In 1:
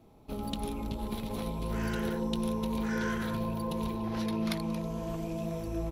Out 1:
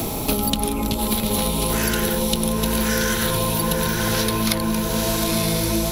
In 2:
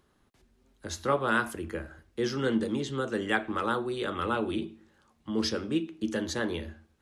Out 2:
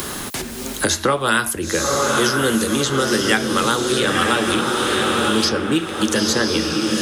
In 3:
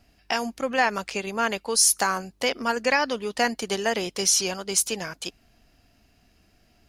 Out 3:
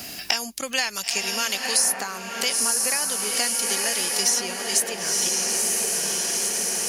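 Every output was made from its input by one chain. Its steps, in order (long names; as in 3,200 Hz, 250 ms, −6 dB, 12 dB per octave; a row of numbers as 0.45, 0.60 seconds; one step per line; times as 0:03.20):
first-order pre-emphasis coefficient 0.8
on a send: feedback delay with all-pass diffusion 966 ms, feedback 44%, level −4 dB
on the sum: multiband upward and downward compressor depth 100%
normalise the peak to −2 dBFS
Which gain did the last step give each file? +23.0, +22.0, +5.0 decibels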